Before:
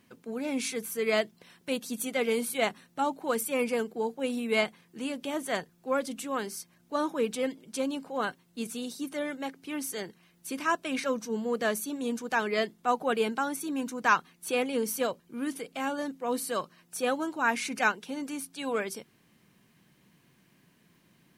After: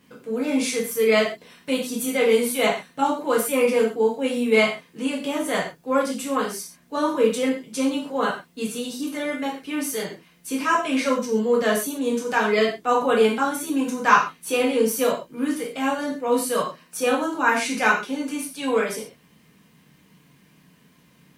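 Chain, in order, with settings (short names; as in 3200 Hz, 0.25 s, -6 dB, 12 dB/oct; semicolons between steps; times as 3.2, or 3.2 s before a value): non-linear reverb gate 0.16 s falling, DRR -4 dB; gain +2 dB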